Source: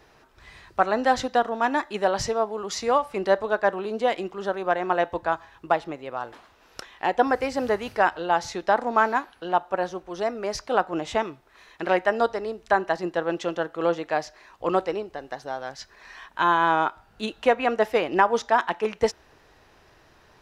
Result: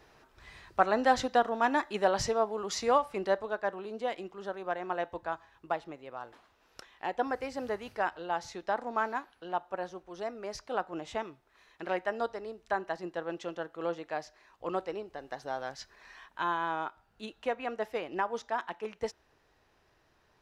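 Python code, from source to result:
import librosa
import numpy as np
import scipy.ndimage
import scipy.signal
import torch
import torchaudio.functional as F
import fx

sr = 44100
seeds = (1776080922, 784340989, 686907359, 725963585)

y = fx.gain(x, sr, db=fx.line((2.95, -4.0), (3.57, -10.5), (14.79, -10.5), (15.6, -3.5), (16.69, -12.5)))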